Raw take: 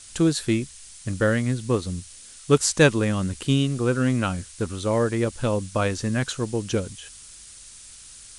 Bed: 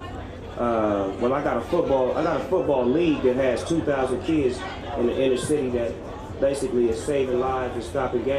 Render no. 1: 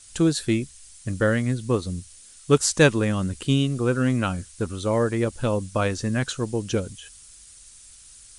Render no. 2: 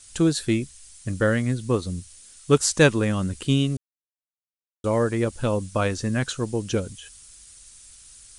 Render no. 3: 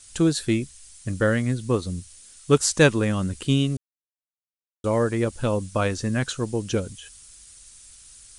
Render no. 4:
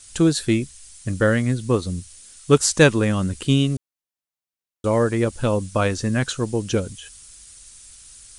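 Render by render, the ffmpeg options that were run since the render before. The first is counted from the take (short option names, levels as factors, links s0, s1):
-af "afftdn=nr=6:nf=-45"
-filter_complex "[0:a]asplit=3[s0][s1][s2];[s0]atrim=end=3.77,asetpts=PTS-STARTPTS,afade=t=out:st=3.766:d=0.004:c=hsin[s3];[s1]atrim=start=3.77:end=4.84,asetpts=PTS-STARTPTS,volume=0[s4];[s2]atrim=start=4.84,asetpts=PTS-STARTPTS,afade=t=in:d=0.004:c=hsin[s5];[s3][s4][s5]concat=n=3:v=0:a=1"
-af anull
-af "volume=1.41,alimiter=limit=0.708:level=0:latency=1"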